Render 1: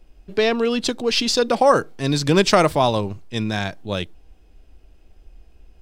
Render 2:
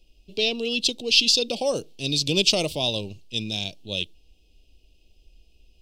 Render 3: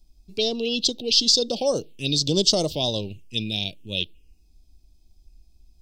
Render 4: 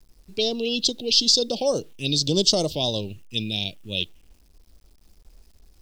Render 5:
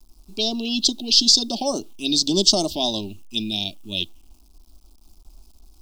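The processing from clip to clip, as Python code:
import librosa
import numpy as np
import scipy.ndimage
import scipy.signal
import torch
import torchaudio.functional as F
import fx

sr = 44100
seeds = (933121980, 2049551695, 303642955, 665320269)

y1 = fx.curve_eq(x, sr, hz=(580.0, 1700.0, 2700.0, 4900.0, 7800.0), db=(0, -25, 13, 12, 7))
y1 = y1 * 10.0 ** (-8.5 / 20.0)
y2 = fx.env_phaser(y1, sr, low_hz=470.0, high_hz=2500.0, full_db=-20.5)
y2 = y2 * 10.0 ** (2.5 / 20.0)
y3 = fx.quant_dither(y2, sr, seeds[0], bits=10, dither='none')
y4 = fx.fixed_phaser(y3, sr, hz=490.0, stages=6)
y4 = y4 * 10.0 ** (5.0 / 20.0)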